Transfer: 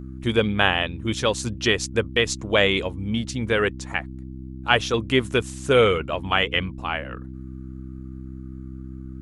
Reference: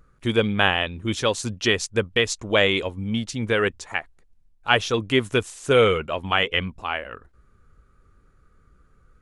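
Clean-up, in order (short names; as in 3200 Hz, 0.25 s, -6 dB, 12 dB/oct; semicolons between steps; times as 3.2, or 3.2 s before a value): de-hum 64.9 Hz, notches 5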